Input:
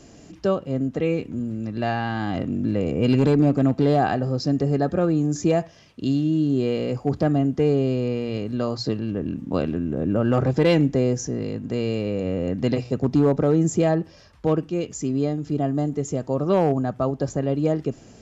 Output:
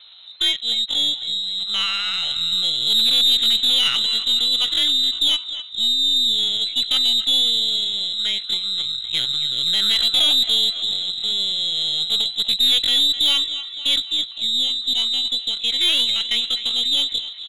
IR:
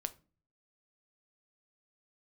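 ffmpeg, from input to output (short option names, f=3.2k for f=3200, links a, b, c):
-filter_complex "[0:a]asplit=2[a][b];[b]aecho=0:1:266|532|798|1064|1330|1596:0.224|0.13|0.0753|0.0437|0.0253|0.0147[c];[a][c]amix=inputs=2:normalize=0,asetrate=45938,aresample=44100,lowpass=f=2.1k:t=q:w=0.5098,lowpass=f=2.1k:t=q:w=0.6013,lowpass=f=2.1k:t=q:w=0.9,lowpass=f=2.1k:t=q:w=2.563,afreqshift=-2500,aeval=exprs='0.447*(cos(1*acos(clip(val(0)/0.447,-1,1)))-cos(1*PI/2))+0.0224*(cos(4*acos(clip(val(0)/0.447,-1,1)))-cos(4*PI/2))+0.0398*(cos(5*acos(clip(val(0)/0.447,-1,1)))-cos(5*PI/2))+0.00562*(cos(7*acos(clip(val(0)/0.447,-1,1)))-cos(7*PI/2))+0.00708*(cos(8*acos(clip(val(0)/0.447,-1,1)))-cos(8*PI/2))':c=same,asetrate=74167,aresample=44100,atempo=0.594604"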